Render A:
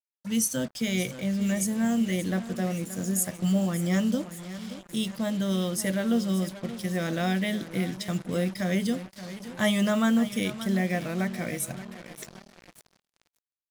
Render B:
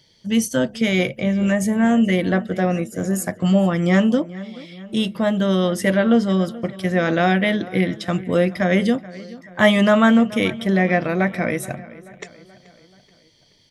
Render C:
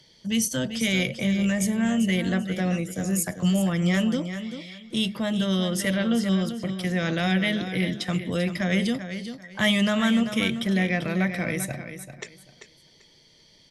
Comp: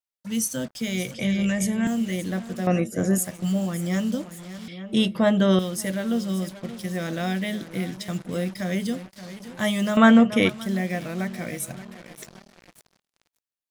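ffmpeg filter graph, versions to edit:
-filter_complex "[1:a]asplit=3[a][b][c];[0:a]asplit=5[d][e][f][g][h];[d]atrim=end=1.142[i];[2:a]atrim=start=1.138:end=1.872[j];[e]atrim=start=1.868:end=2.672[k];[a]atrim=start=2.668:end=3.182[l];[f]atrim=start=3.178:end=4.682[m];[b]atrim=start=4.678:end=5.592[n];[g]atrim=start=5.588:end=9.972[o];[c]atrim=start=9.968:end=10.492[p];[h]atrim=start=10.488[q];[i][j]acrossfade=d=0.004:c1=hsin:c2=hsin[r];[r][k]acrossfade=d=0.004:c1=hsin:c2=hsin[s];[s][l]acrossfade=d=0.004:c1=hsin:c2=hsin[t];[t][m]acrossfade=d=0.004:c1=hsin:c2=hsin[u];[u][n]acrossfade=d=0.004:c1=hsin:c2=hsin[v];[v][o]acrossfade=d=0.004:c1=hsin:c2=hsin[w];[w][p]acrossfade=d=0.004:c1=hsin:c2=hsin[x];[x][q]acrossfade=d=0.004:c1=hsin:c2=hsin"

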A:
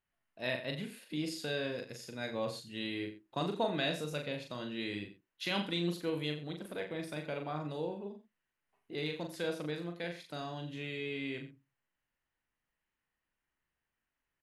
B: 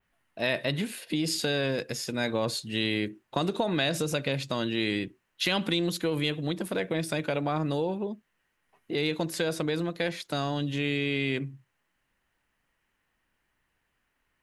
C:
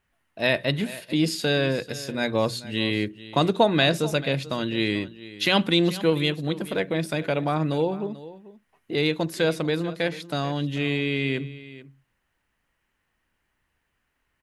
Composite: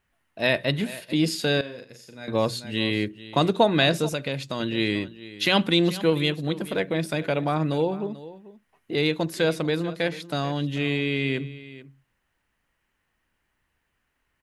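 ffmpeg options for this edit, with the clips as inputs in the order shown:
-filter_complex "[2:a]asplit=3[a][b][c];[a]atrim=end=1.612[d];[0:a]atrim=start=1.608:end=2.282[e];[b]atrim=start=2.278:end=4.092[f];[1:a]atrim=start=4.088:end=4.602[g];[c]atrim=start=4.598[h];[d][e]acrossfade=d=0.004:c1=hsin:c2=hsin[i];[i][f]acrossfade=d=0.004:c1=hsin:c2=hsin[j];[j][g]acrossfade=d=0.004:c1=hsin:c2=hsin[k];[k][h]acrossfade=d=0.004:c1=hsin:c2=hsin"

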